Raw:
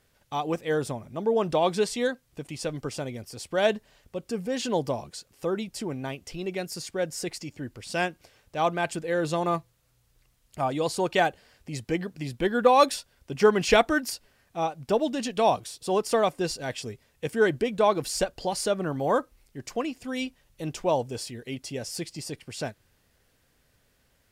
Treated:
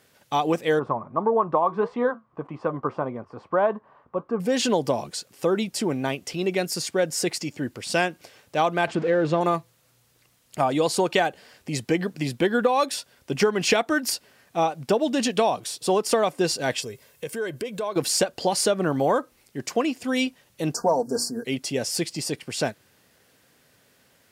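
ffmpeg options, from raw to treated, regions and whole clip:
-filter_complex "[0:a]asettb=1/sr,asplit=3[a][b][c];[a]atrim=end=0.794[d];[b]atrim=start=0.79:end=4.4,asetpts=PTS-STARTPTS,afade=t=in:d=0.004:c=qsin,afade=t=out:st=3.606:d=0.004:c=qsin,flanger=delay=4.8:depth=2.1:regen=-78:speed=1.7:shape=sinusoidal,lowpass=f=1.1k:t=q:w=6.3[e];[c]atrim=start=4.396[f];[d][e]acrossfade=d=0.004:c1=hsin:c2=qsin[g];[g][f]acrossfade=d=0.004:c1=qsin:c2=hsin,asettb=1/sr,asplit=3[h][i][j];[h]atrim=end=8.874[k];[i]atrim=start=8.87:end=9.41,asetpts=PTS-STARTPTS,afade=t=in:d=0.004:c=qsin,afade=t=out:st=0.536:d=0.004:c=qsin,aeval=exprs='val(0)+0.5*0.015*sgn(val(0))':c=same,lowpass=5.1k,highshelf=f=2.5k:g=-11.5[l];[j]atrim=start=9.406[m];[k][l]acrossfade=d=0.004:c1=hsin:c2=qsin[n];[n][m]acrossfade=d=0.004:c1=qsin:c2=hsin,asettb=1/sr,asplit=3[o][p][q];[o]atrim=end=16.804[r];[p]atrim=start=16.8:end=17.96,asetpts=PTS-STARTPTS,afade=t=in:d=0.004:c=qsin,afade=t=out:st=1.156:d=0.004:c=qsin,highshelf=f=11k:g=11.5,aecho=1:1:1.9:0.38,atrim=end_sample=51156,acompressor=threshold=-39dB:ratio=3:attack=3.2:release=140:knee=1:detection=peak[s];[q]atrim=start=17.956[t];[r][s]acrossfade=d=0.004:c1=hsin:c2=qsin[u];[u][t]acrossfade=d=0.004:c1=qsin:c2=hsin,asettb=1/sr,asplit=3[v][w][x];[v]atrim=end=20.744[y];[w]atrim=start=20.74:end=21.45,asetpts=PTS-STARTPTS,afade=t=in:d=0.004:c=qsin,afade=t=out:st=0.706:d=0.004:c=qsin,asuperstop=centerf=2700:order=20:qfactor=1,bandreject=f=60:t=h:w=6,bandreject=f=120:t=h:w=6,bandreject=f=180:t=h:w=6,bandreject=f=240:t=h:w=6,bandreject=f=300:t=h:w=6,bandreject=f=360:t=h:w=6,aecho=1:1:4.3:0.7,atrim=end_sample=31311[z];[x]atrim=start=21.446[aa];[y][z]acrossfade=d=0.004:c1=hsin:c2=qsin[ab];[ab][aa]acrossfade=d=0.004:c1=qsin:c2=hsin,highpass=150,acompressor=threshold=-25dB:ratio=12,volume=8dB"

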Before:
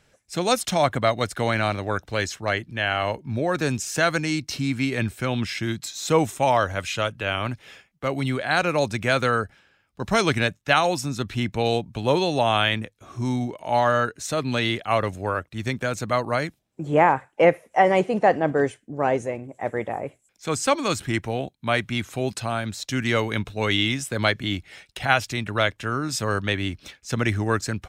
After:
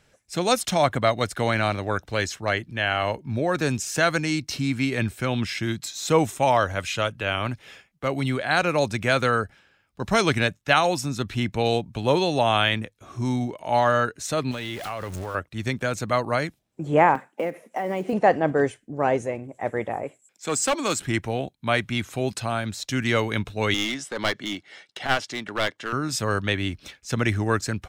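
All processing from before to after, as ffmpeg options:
-filter_complex "[0:a]asettb=1/sr,asplit=3[a][b][c];[a]atrim=end=14.514[d];[b]atrim=start=14.51:end=15.35,asetpts=PTS-STARTPTS,afade=t=in:d=0.004:c=qsin,afade=t=out:st=0.836:d=0.004:c=qsin,aeval=exprs='val(0)+0.5*0.0299*sgn(val(0))':c=same,acompressor=threshold=-28dB:ratio=6:attack=3.2:release=140:knee=1:detection=peak[e];[c]atrim=start=15.346[f];[d][e]acrossfade=d=0.004:c1=hsin:c2=qsin[g];[g][f]acrossfade=d=0.004:c1=qsin:c2=hsin,asettb=1/sr,asplit=3[h][i][j];[h]atrim=end=17.154[k];[i]atrim=start=17.15:end=18.13,asetpts=PTS-STARTPTS,afade=t=in:d=0.004:c=qsin,afade=t=out:st=0.976:d=0.004:c=qsin,acompressor=threshold=-24dB:ratio=16:attack=3.2:release=140:knee=1:detection=peak,highpass=f=220:t=q:w=2.7,acrusher=bits=8:mode=log:mix=0:aa=0.000001[l];[j]atrim=start=18.126[m];[k][l]acrossfade=d=0.004:c1=hsin:c2=qsin[n];[n][m]acrossfade=d=0.004:c1=qsin:c2=hsin,asettb=1/sr,asplit=3[o][p][q];[o]atrim=end=20.034[r];[p]atrim=start=20.03:end=21.02,asetpts=PTS-STARTPTS,afade=t=in:d=0.004:c=qsin,afade=t=out:st=0.986:d=0.004:c=qsin,highpass=180,equalizer=f=7.6k:w=5.9:g=9,volume=17.5dB,asoftclip=hard,volume=-17.5dB[s];[q]atrim=start=21.016[t];[r][s]acrossfade=d=0.004:c1=hsin:c2=qsin[u];[u][t]acrossfade=d=0.004:c1=qsin:c2=hsin,asettb=1/sr,asplit=3[v][w][x];[v]atrim=end=23.744[y];[w]atrim=start=23.74:end=25.93,asetpts=PTS-STARTPTS,afade=t=in:d=0.004:c=qsin,afade=t=out:st=2.186:d=0.004:c=qsin,highpass=270,lowpass=6.4k,bandreject=f=2.5k:w=7.6,aeval=exprs='clip(val(0),-1,0.0473)':c=same[z];[x]atrim=start=25.926[aa];[y][z]acrossfade=d=0.004:c1=hsin:c2=qsin[ab];[ab][aa]acrossfade=d=0.004:c1=qsin:c2=hsin"

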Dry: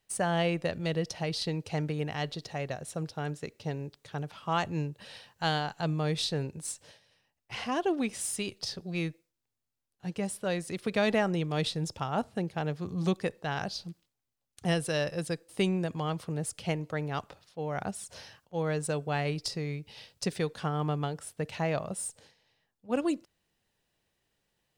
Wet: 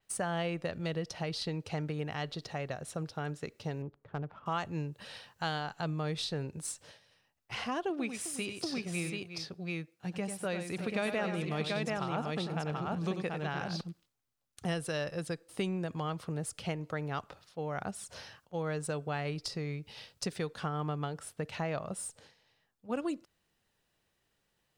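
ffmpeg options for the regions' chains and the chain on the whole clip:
-filter_complex "[0:a]asettb=1/sr,asplit=3[a][b][c];[a]atrim=end=3.824[d];[b]atrim=start=3.82:end=4.46,asetpts=PTS-STARTPTS,afade=t=in:d=0.004:c=qsin,afade=t=out:st=0.636:d=0.004:c=qsin,lowpass=3.6k,adynamicsmooth=sensitivity=4:basefreq=1k[e];[c]atrim=start=4.456[f];[d][e]acrossfade=d=0.004:c1=hsin:c2=qsin[g];[g][f]acrossfade=d=0.004:c1=qsin:c2=hsin,asettb=1/sr,asplit=3[h][i][j];[h]atrim=end=7.904[k];[i]atrim=start=7.9:end=13.81,asetpts=PTS-STARTPTS,afade=t=in:d=0.004:c=qsin,afade=t=out:st=5.906:d=0.004:c=qsin,highpass=77,equalizer=f=2.4k:w=5.9:g=5,aecho=1:1:92|356|735:0.376|0.188|0.708,atrim=end_sample=260631[l];[j]atrim=start=13.806[m];[k][l]acrossfade=d=0.004:c1=hsin:c2=qsin[n];[n][m]acrossfade=d=0.004:c1=qsin:c2=hsin,equalizer=f=1.3k:t=o:w=0.53:g=4,acompressor=threshold=-35dB:ratio=2,adynamicequalizer=threshold=0.00178:dfrequency=5500:dqfactor=0.7:tfrequency=5500:tqfactor=0.7:attack=5:release=100:ratio=0.375:range=2:mode=cutabove:tftype=highshelf"

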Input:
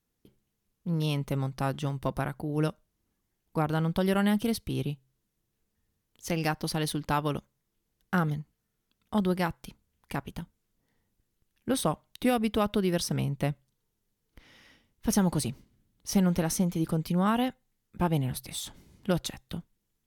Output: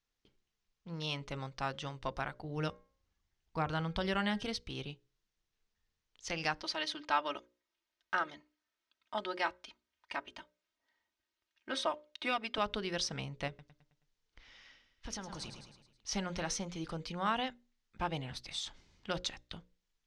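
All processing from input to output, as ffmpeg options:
-filter_complex "[0:a]asettb=1/sr,asplit=3[a][b][c];[a]atrim=end=2.444[d];[b]atrim=start=2.44:end=4.46,asetpts=PTS-STARTPTS,afade=t=in:d=0.004:c=qsin,afade=t=out:st=2.016:d=0.004:c=qsin,equalizer=f=71:w=0.54:g=9.5,bandreject=f=269.3:t=h:w=4,bandreject=f=538.6:t=h:w=4,bandreject=f=807.9:t=h:w=4,bandreject=f=1.0772k:t=h:w=4,bandreject=f=1.3465k:t=h:w=4,bandreject=f=1.6158k:t=h:w=4,bandreject=f=1.8851k:t=h:w=4,bandreject=f=2.1544k:t=h:w=4,bandreject=f=2.4237k:t=h:w=4[e];[c]atrim=start=4.456[f];[d][e]acrossfade=d=0.004:c1=hsin:c2=qsin[g];[g][f]acrossfade=d=0.004:c1=qsin:c2=hsin,asettb=1/sr,asplit=3[h][i][j];[h]atrim=end=6.624[k];[i]atrim=start=6.62:end=12.58,asetpts=PTS-STARTPTS,afade=t=in:d=0.004:c=qsin,afade=t=out:st=5.956:d=0.004:c=qsin,highpass=73,bass=f=250:g=-12,treble=f=4k:g=-5,aecho=1:1:3.2:0.74,atrim=end_sample=262836[l];[j]atrim=start=12.576[m];[k][l]acrossfade=d=0.004:c1=hsin:c2=qsin[n];[n][m]acrossfade=d=0.004:c1=qsin:c2=hsin,asettb=1/sr,asplit=3[o][p][q];[o]atrim=end=13.484[r];[p]atrim=start=13.48:end=16.11,asetpts=PTS-STARTPTS,afade=t=in:d=0.004:c=qsin,afade=t=out:st=2.626:d=0.004:c=qsin,aecho=1:1:107|214|321|428|535:0.266|0.128|0.0613|0.0294|0.0141,atrim=end_sample=115983,acompressor=threshold=-31dB:ratio=3:attack=3.2:release=140:knee=1:detection=peak[s];[q]atrim=start=16.106[t];[r][s]acrossfade=d=0.004:c1=hsin:c2=qsin[u];[u][t]acrossfade=d=0.004:c1=qsin:c2=hsin,lowpass=f=6.1k:w=0.5412,lowpass=f=6.1k:w=1.3066,equalizer=f=180:w=0.34:g=-14,bandreject=f=60:t=h:w=6,bandreject=f=120:t=h:w=6,bandreject=f=180:t=h:w=6,bandreject=f=240:t=h:w=6,bandreject=f=300:t=h:w=6,bandreject=f=360:t=h:w=6,bandreject=f=420:t=h:w=6,bandreject=f=480:t=h:w=6,bandreject=f=540:t=h:w=6,bandreject=f=600:t=h:w=6"

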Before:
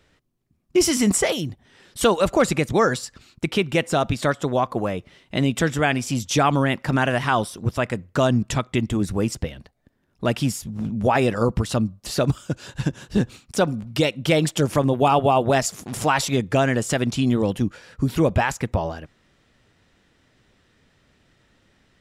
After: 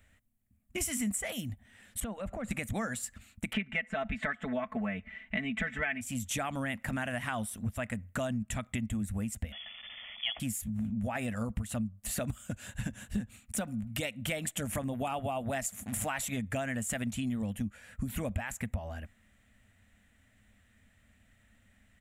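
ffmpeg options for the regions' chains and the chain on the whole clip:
-filter_complex "[0:a]asettb=1/sr,asplit=3[a][b][c];[a]atrim=end=2.004[d];[b]atrim=start=2:end=2.51,asetpts=PTS-STARTPTS,afade=t=in:d=0.004:c=qsin,afade=t=out:st=0.506:d=0.004:c=qsin,lowpass=f=1.1k:p=1,acompressor=threshold=-26dB:ratio=4:attack=3.2:release=140:knee=1:detection=peak[e];[c]atrim=start=2.506[f];[d][e]acrossfade=d=0.004:c1=hsin:c2=qsin[g];[g][f]acrossfade=d=0.004:c1=qsin:c2=hsin,asettb=1/sr,asplit=3[h][i][j];[h]atrim=end=3.534[k];[i]atrim=start=3.53:end=6.01,asetpts=PTS-STARTPTS,afade=t=in:d=0.004:c=qsin,afade=t=out:st=2.476:d=0.004:c=qsin,lowpass=2.8k,equalizer=f=2k:w=1.5:g=10,aecho=1:1:4.6:0.87,atrim=end_sample=109368[l];[j]atrim=start=6.006[m];[k][l]acrossfade=d=0.004:c1=hsin:c2=qsin[n];[n][m]acrossfade=d=0.004:c1=qsin:c2=hsin,asettb=1/sr,asplit=3[o][p][q];[o]atrim=end=9.524[r];[p]atrim=start=9.52:end=10.4,asetpts=PTS-STARTPTS,afade=t=in:d=0.004:c=qsin,afade=t=out:st=0.876:d=0.004:c=qsin,aeval=exprs='val(0)+0.5*0.0224*sgn(val(0))':c=same,asuperstop=centerf=1900:order=4:qfactor=7.7,lowpass=f=3k:t=q:w=0.5098,lowpass=f=3k:t=q:w=0.6013,lowpass=f=3k:t=q:w=0.9,lowpass=f=3k:t=q:w=2.563,afreqshift=-3500[s];[q]atrim=start=10.396[t];[r][s]acrossfade=d=0.004:c1=hsin:c2=qsin[u];[u][t]acrossfade=d=0.004:c1=qsin:c2=hsin,firequalizer=gain_entry='entry(100,0);entry(150,-16);entry(210,1);entry(350,-21);entry(650,-6);entry(940,-13);entry(1900,-2);entry(5000,-17);entry(7400,0);entry(14000,4)':delay=0.05:min_phase=1,acompressor=threshold=-31dB:ratio=6"

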